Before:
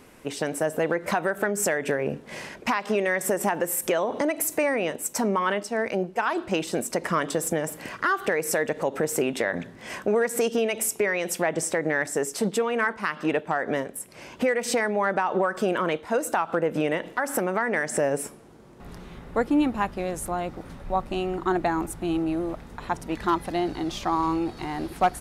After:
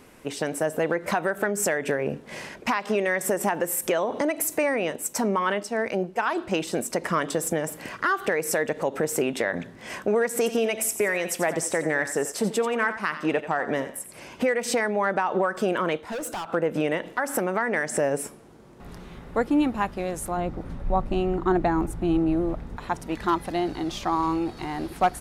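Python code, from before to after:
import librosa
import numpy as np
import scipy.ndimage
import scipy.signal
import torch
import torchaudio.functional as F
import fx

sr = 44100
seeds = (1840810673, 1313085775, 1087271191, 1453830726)

y = fx.echo_thinned(x, sr, ms=88, feedback_pct=33, hz=420.0, wet_db=-10.5, at=(10.45, 14.43), fade=0.02)
y = fx.clip_hard(y, sr, threshold_db=-29.0, at=(16.04, 16.48))
y = fx.tilt_eq(y, sr, slope=-2.0, at=(20.37, 22.77))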